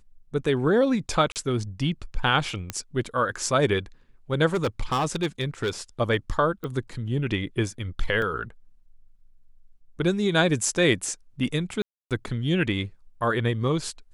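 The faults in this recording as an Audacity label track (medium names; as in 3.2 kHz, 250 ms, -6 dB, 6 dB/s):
1.320000	1.360000	dropout 38 ms
2.700000	2.700000	pop -13 dBFS
4.530000	5.700000	clipped -20 dBFS
6.640000	6.640000	pop -21 dBFS
8.220000	8.220000	dropout 2.1 ms
11.820000	12.110000	dropout 287 ms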